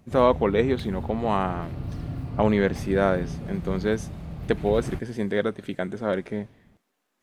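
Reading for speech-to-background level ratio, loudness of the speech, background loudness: 9.0 dB, −26.0 LKFS, −35.0 LKFS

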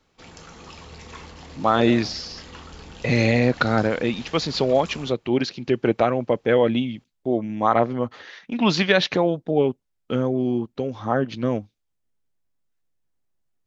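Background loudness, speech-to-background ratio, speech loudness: −42.5 LKFS, 20.0 dB, −22.5 LKFS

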